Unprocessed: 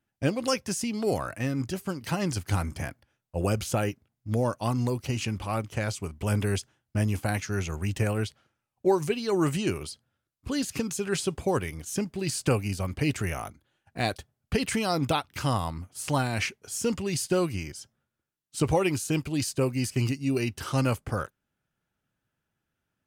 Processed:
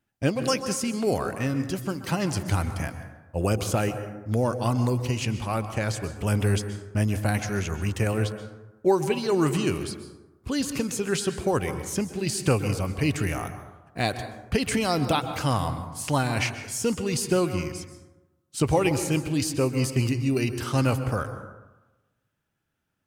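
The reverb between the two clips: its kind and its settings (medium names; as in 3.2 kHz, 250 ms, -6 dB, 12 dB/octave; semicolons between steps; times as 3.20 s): plate-style reverb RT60 1.1 s, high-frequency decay 0.4×, pre-delay 115 ms, DRR 9.5 dB; trim +2 dB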